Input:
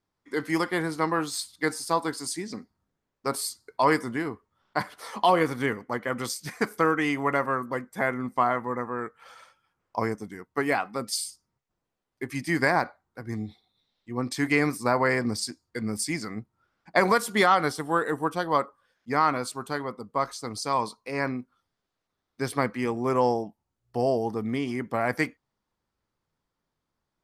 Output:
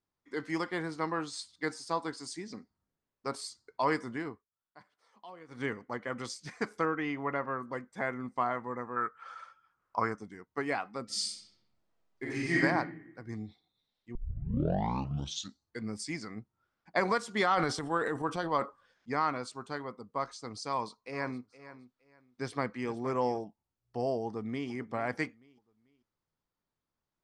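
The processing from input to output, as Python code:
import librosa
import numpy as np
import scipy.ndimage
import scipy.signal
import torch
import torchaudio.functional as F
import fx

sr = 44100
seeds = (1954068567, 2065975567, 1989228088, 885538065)

y = fx.air_absorb(x, sr, metres=180.0, at=(6.85, 7.6))
y = fx.peak_eq(y, sr, hz=1300.0, db=13.5, octaves=0.72, at=(8.96, 10.21))
y = fx.reverb_throw(y, sr, start_s=11.05, length_s=1.56, rt60_s=1.0, drr_db=-7.0)
y = fx.transient(y, sr, attack_db=2, sustain_db=9, at=(17.56, 19.15), fade=0.02)
y = fx.echo_feedback(y, sr, ms=466, feedback_pct=22, wet_db=-15.0, at=(21.12, 23.43), fade=0.02)
y = fx.echo_throw(y, sr, start_s=24.25, length_s=0.45, ms=440, feedback_pct=35, wet_db=-17.0)
y = fx.edit(y, sr, fx.fade_down_up(start_s=4.29, length_s=1.34, db=-21.0, fade_s=0.15),
    fx.tape_start(start_s=14.15, length_s=1.64), tone=tone)
y = scipy.signal.sosfilt(scipy.signal.butter(4, 7700.0, 'lowpass', fs=sr, output='sos'), y)
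y = y * 10.0 ** (-7.5 / 20.0)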